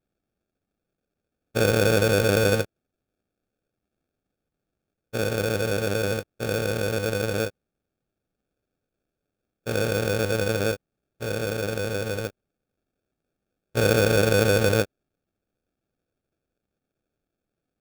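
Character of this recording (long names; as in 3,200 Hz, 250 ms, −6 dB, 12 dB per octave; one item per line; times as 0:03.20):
aliases and images of a low sample rate 1,000 Hz, jitter 0%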